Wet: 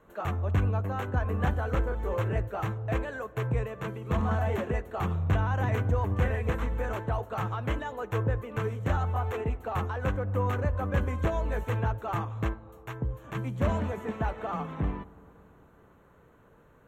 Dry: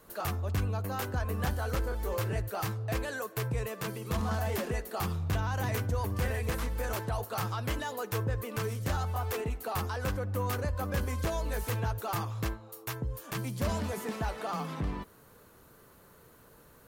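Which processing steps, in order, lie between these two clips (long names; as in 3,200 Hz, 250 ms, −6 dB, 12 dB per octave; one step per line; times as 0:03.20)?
moving average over 9 samples
delay with a low-pass on its return 113 ms, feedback 83%, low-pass 1,000 Hz, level −21 dB
expander for the loud parts 1.5 to 1, over −39 dBFS
level +6 dB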